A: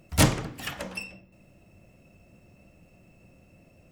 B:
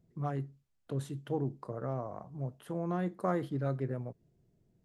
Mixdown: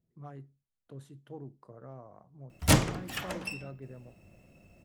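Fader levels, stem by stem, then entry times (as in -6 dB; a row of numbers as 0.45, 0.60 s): -2.0, -11.0 dB; 2.50, 0.00 s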